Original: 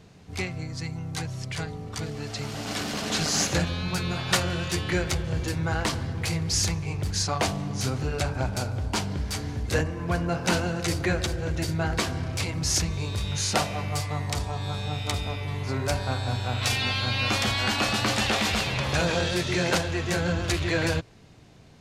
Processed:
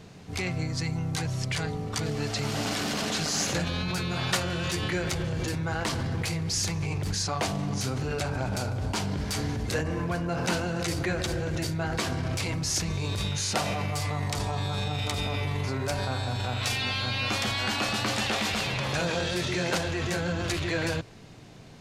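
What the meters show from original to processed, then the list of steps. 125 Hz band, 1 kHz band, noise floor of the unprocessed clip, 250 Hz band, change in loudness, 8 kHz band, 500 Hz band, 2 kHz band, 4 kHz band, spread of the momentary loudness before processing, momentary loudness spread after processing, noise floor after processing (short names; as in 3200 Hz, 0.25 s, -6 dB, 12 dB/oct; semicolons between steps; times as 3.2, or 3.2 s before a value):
-1.5 dB, -1.5 dB, -41 dBFS, -1.0 dB, -2.0 dB, -2.5 dB, -1.5 dB, -2.0 dB, -2.0 dB, 9 LU, 3 LU, -38 dBFS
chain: bell 66 Hz -13.5 dB 0.41 oct; in parallel at -0.5 dB: negative-ratio compressor -33 dBFS, ratio -0.5; on the sum: gain -4 dB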